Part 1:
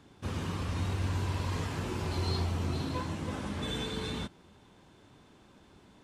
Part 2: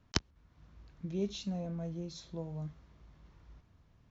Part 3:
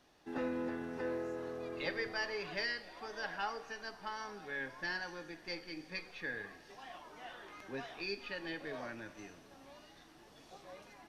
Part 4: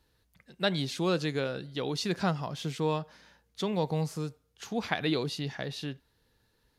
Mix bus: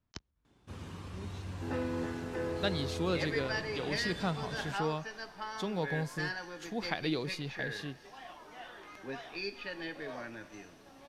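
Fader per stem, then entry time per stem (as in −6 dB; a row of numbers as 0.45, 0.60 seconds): −10.0, −14.5, +1.5, −5.0 decibels; 0.45, 0.00, 1.35, 2.00 seconds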